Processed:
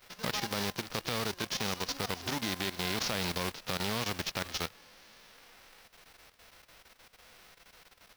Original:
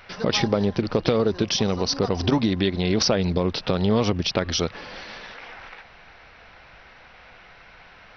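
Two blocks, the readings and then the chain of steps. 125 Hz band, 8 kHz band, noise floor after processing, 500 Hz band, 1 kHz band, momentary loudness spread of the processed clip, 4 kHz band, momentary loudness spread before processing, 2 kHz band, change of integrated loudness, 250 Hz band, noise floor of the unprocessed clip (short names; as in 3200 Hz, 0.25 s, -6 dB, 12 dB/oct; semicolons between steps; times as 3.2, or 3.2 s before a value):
-15.0 dB, n/a, -64 dBFS, -16.0 dB, -7.5 dB, 3 LU, -8.0 dB, 17 LU, -4.5 dB, -11.0 dB, -16.0 dB, -49 dBFS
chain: spectral whitening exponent 0.3; companded quantiser 4-bit; level quantiser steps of 12 dB; gain -9 dB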